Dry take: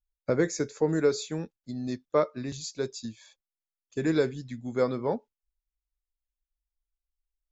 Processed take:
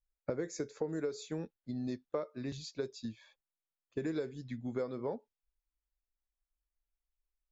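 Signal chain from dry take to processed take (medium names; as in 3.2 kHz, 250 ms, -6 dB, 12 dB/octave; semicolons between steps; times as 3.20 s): level-controlled noise filter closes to 2.1 kHz, open at -22.5 dBFS; dynamic bell 450 Hz, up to +4 dB, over -36 dBFS, Q 0.96; compression 6:1, threshold -32 dBFS, peak gain reduction 16 dB; trim -2 dB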